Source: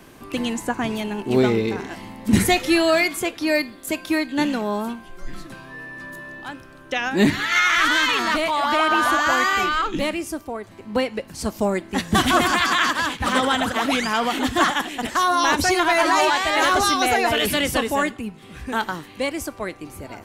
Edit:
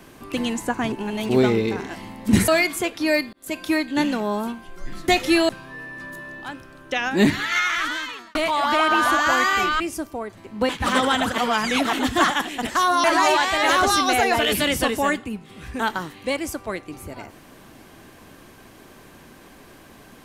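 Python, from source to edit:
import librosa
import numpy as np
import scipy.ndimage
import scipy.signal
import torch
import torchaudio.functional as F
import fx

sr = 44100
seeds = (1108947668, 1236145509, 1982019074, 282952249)

y = fx.edit(x, sr, fx.reverse_span(start_s=0.92, length_s=0.37),
    fx.move(start_s=2.48, length_s=0.41, to_s=5.49),
    fx.fade_in_span(start_s=3.74, length_s=0.28),
    fx.fade_out_span(start_s=7.24, length_s=1.11),
    fx.cut(start_s=9.8, length_s=0.34),
    fx.cut(start_s=11.03, length_s=2.06),
    fx.reverse_span(start_s=13.78, length_s=0.55),
    fx.cut(start_s=15.44, length_s=0.53), tone=tone)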